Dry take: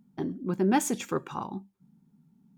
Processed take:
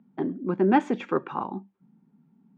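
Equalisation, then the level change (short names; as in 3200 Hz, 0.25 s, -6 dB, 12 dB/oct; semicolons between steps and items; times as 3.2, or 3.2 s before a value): air absorption 150 m; three-band isolator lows -14 dB, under 190 Hz, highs -18 dB, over 3100 Hz; +5.5 dB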